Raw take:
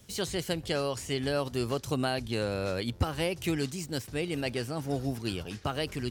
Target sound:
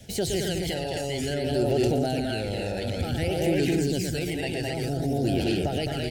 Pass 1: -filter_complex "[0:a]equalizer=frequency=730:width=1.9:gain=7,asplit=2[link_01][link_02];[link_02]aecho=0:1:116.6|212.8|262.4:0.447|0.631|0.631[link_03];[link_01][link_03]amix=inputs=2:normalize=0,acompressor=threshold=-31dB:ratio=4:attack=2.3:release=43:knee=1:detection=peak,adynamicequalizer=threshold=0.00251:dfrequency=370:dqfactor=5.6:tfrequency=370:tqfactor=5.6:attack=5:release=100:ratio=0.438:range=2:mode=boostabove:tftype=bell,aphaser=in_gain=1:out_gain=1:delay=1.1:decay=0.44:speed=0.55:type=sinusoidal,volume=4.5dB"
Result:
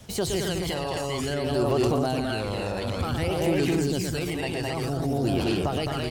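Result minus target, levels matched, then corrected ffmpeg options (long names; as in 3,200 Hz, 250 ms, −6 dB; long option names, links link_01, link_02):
1,000 Hz band +3.5 dB
-filter_complex "[0:a]equalizer=frequency=730:width=1.9:gain=7,asplit=2[link_01][link_02];[link_02]aecho=0:1:116.6|212.8|262.4:0.447|0.631|0.631[link_03];[link_01][link_03]amix=inputs=2:normalize=0,acompressor=threshold=-31dB:ratio=4:attack=2.3:release=43:knee=1:detection=peak,adynamicequalizer=threshold=0.00251:dfrequency=370:dqfactor=5.6:tfrequency=370:tqfactor=5.6:attack=5:release=100:ratio=0.438:range=2:mode=boostabove:tftype=bell,asuperstop=centerf=1100:order=4:qfactor=1.5,aphaser=in_gain=1:out_gain=1:delay=1.1:decay=0.44:speed=0.55:type=sinusoidal,volume=4.5dB"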